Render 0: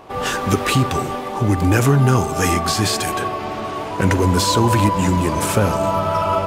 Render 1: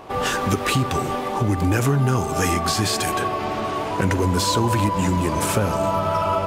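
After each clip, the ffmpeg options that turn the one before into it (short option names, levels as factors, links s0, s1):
-af "acompressor=threshold=0.0794:ratio=2,volume=1.19"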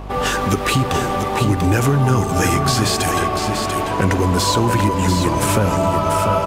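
-af "aeval=exprs='val(0)+0.0224*(sin(2*PI*50*n/s)+sin(2*PI*2*50*n/s)/2+sin(2*PI*3*50*n/s)/3+sin(2*PI*4*50*n/s)/4+sin(2*PI*5*50*n/s)/5)':c=same,aecho=1:1:691:0.473,volume=1.41"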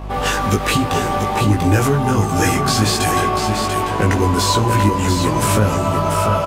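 -filter_complex "[0:a]asplit=2[s0][s1];[s1]adelay=19,volume=0.75[s2];[s0][s2]amix=inputs=2:normalize=0,volume=0.891"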